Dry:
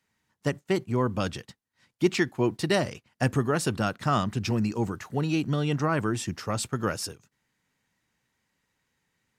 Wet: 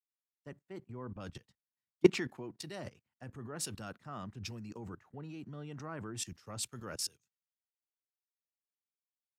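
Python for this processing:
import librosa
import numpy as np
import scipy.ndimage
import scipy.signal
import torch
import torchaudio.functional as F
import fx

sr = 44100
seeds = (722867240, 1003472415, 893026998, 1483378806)

y = fx.level_steps(x, sr, step_db=18)
y = fx.band_widen(y, sr, depth_pct=100)
y = y * librosa.db_to_amplitude(-7.0)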